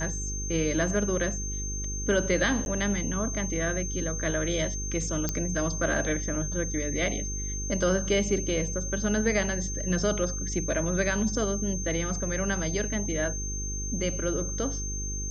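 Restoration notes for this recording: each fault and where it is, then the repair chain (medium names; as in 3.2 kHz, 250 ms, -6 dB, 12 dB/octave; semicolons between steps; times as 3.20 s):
buzz 50 Hz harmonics 9 -34 dBFS
whine 6.3 kHz -34 dBFS
2.65–2.66 s: dropout 11 ms
5.29 s: pop -13 dBFS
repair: de-click; band-stop 6.3 kHz, Q 30; de-hum 50 Hz, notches 9; interpolate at 2.65 s, 11 ms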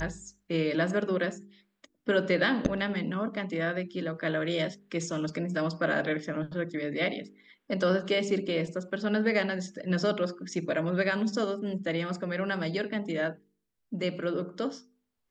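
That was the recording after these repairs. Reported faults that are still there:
nothing left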